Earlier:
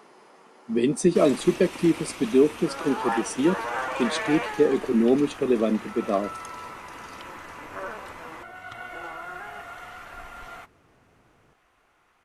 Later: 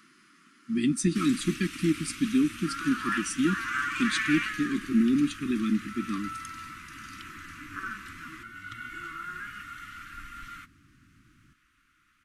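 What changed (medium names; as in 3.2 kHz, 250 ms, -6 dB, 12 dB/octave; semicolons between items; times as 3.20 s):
second sound +4.0 dB; master: add elliptic band-stop 300–1300 Hz, stop band 40 dB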